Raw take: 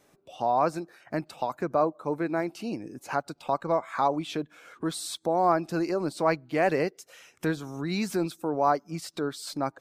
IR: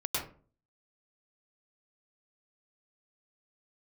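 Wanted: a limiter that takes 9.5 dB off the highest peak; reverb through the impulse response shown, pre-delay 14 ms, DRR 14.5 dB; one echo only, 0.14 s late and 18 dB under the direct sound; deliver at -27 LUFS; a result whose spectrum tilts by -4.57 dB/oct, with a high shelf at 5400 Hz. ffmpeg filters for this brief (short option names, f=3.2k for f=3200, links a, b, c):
-filter_complex "[0:a]highshelf=f=5.4k:g=5.5,alimiter=limit=-19dB:level=0:latency=1,aecho=1:1:140:0.126,asplit=2[a][b];[1:a]atrim=start_sample=2205,adelay=14[c];[b][c]afir=irnorm=-1:irlink=0,volume=-20.5dB[d];[a][d]amix=inputs=2:normalize=0,volume=4.5dB"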